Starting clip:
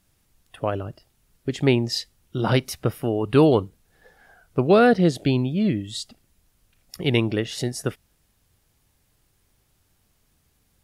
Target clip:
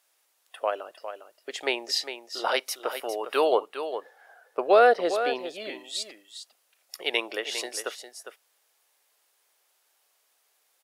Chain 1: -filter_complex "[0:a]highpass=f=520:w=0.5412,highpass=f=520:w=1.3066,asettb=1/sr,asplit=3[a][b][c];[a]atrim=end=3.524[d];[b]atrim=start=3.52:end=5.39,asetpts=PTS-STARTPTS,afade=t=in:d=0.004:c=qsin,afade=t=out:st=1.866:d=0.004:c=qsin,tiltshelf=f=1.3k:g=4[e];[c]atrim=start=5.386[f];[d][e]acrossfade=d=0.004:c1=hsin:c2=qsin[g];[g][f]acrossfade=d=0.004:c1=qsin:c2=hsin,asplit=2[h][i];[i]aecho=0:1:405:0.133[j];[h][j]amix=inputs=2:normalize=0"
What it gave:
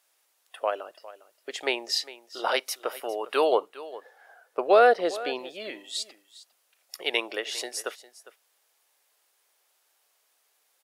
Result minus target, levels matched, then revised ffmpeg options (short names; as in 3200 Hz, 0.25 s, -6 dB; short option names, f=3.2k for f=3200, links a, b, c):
echo-to-direct -7.5 dB
-filter_complex "[0:a]highpass=f=520:w=0.5412,highpass=f=520:w=1.3066,asettb=1/sr,asplit=3[a][b][c];[a]atrim=end=3.524[d];[b]atrim=start=3.52:end=5.39,asetpts=PTS-STARTPTS,afade=t=in:d=0.004:c=qsin,afade=t=out:st=1.866:d=0.004:c=qsin,tiltshelf=f=1.3k:g=4[e];[c]atrim=start=5.386[f];[d][e]acrossfade=d=0.004:c1=hsin:c2=qsin[g];[g][f]acrossfade=d=0.004:c1=qsin:c2=hsin,asplit=2[h][i];[i]aecho=0:1:405:0.316[j];[h][j]amix=inputs=2:normalize=0"